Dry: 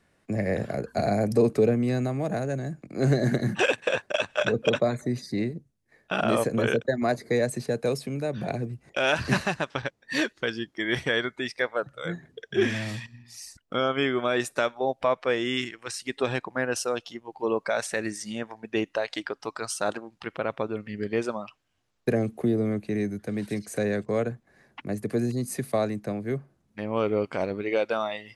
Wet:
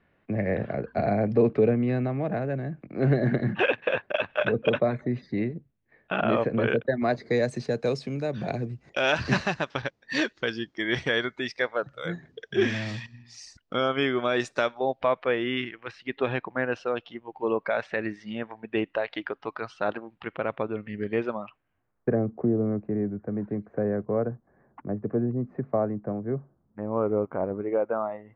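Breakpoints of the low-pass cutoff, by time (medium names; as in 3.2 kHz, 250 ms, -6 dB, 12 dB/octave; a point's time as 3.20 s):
low-pass 24 dB/octave
6.82 s 3 kHz
7.44 s 6.1 kHz
14.57 s 6.1 kHz
15.36 s 3.1 kHz
21.34 s 3.1 kHz
22.27 s 1.3 kHz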